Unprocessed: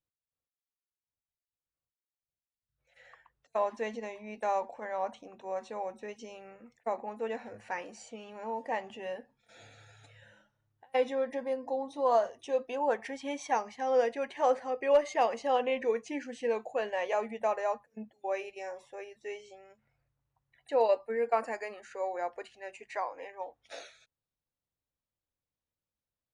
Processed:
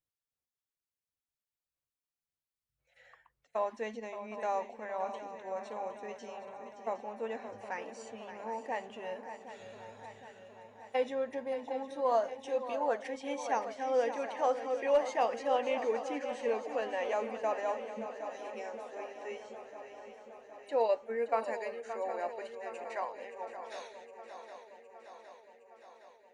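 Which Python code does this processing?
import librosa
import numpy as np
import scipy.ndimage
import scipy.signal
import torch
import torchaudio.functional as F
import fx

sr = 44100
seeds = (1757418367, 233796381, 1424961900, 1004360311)

y = fx.spec_repair(x, sr, seeds[0], start_s=17.98, length_s=0.49, low_hz=310.0, high_hz=3000.0, source='both')
y = fx.echo_swing(y, sr, ms=763, ratio=3, feedback_pct=64, wet_db=-11.0)
y = F.gain(torch.from_numpy(y), -3.0).numpy()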